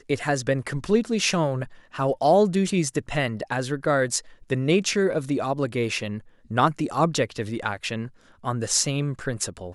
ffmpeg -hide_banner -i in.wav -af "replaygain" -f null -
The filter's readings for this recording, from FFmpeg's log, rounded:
track_gain = +3.3 dB
track_peak = 0.401